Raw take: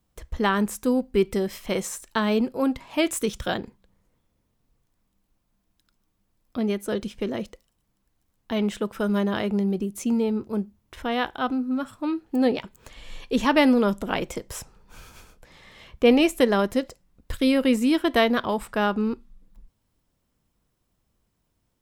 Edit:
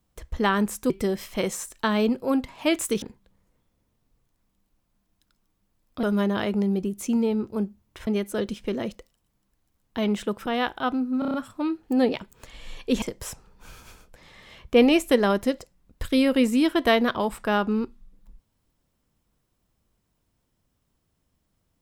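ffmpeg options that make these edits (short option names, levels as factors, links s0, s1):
-filter_complex "[0:a]asplit=12[s0][s1][s2][s3][s4][s5][s6][s7][s8][s9][s10][s11];[s0]atrim=end=0.902[s12];[s1]atrim=start=1.218:end=3.342[s13];[s2]atrim=start=3.598:end=6.612[s14];[s3]atrim=start=8.998:end=11.042[s15];[s4]atrim=start=6.608:end=9.002[s16];[s5]atrim=start=11.038:end=11.802[s17];[s6]atrim=start=11.768:end=11.802[s18];[s7]atrim=start=11.768:end=11.802[s19];[s8]atrim=start=11.768:end=11.802[s20];[s9]atrim=start=11.768:end=11.802[s21];[s10]atrim=start=11.768:end=13.452[s22];[s11]atrim=start=14.308[s23];[s12][s13]acrossfade=d=0.004:c1=hsin:c2=hsin[s24];[s24][s14]acrossfade=d=0.004:c1=hsin:c2=hsin[s25];[s25][s15]acrossfade=d=0.004:c1=hsin:c2=hsin[s26];[s26][s16]acrossfade=d=0.004:c1=hsin:c2=hsin[s27];[s27][s17]acrossfade=d=0.004:c1=hsin:c2=hsin[s28];[s28][s18]acrossfade=d=0.004:c1=hsin:c2=hsin[s29];[s29][s19]acrossfade=d=0.004:c1=hsin:c2=hsin[s30];[s30][s20]acrossfade=d=0.004:c1=hsin:c2=hsin[s31];[s31][s21]acrossfade=d=0.004:c1=hsin:c2=hsin[s32];[s32][s22]acrossfade=d=0.004:c1=hsin:c2=hsin[s33];[s33][s23]acrossfade=d=0.004:c1=hsin:c2=hsin"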